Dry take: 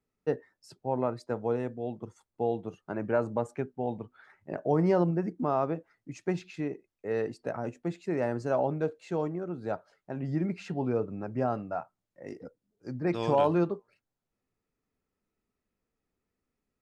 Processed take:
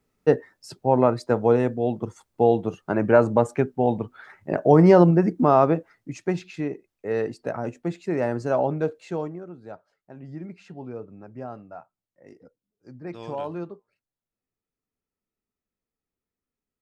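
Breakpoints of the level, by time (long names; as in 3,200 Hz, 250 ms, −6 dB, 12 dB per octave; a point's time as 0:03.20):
0:05.73 +11 dB
0:06.32 +5 dB
0:09.01 +5 dB
0:09.64 −7 dB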